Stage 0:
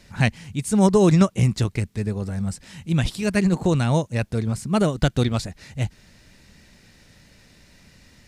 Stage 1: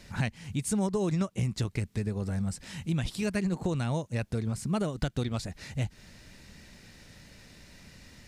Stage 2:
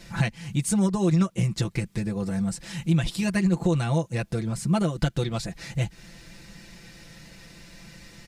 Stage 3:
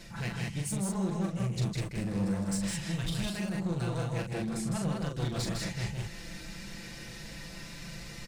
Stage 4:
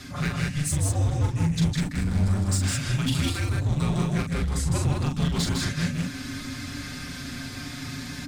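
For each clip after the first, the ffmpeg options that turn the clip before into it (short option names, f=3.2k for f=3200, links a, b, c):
-af "acompressor=threshold=-28dB:ratio=4"
-af "aecho=1:1:5.9:0.83,volume=3dB"
-af "areverse,acompressor=threshold=-29dB:ratio=16,areverse,volume=31.5dB,asoftclip=hard,volume=-31.5dB,aecho=1:1:40.82|157.4|198.3:0.562|0.631|0.708"
-af "afreqshift=-290,volume=8dB"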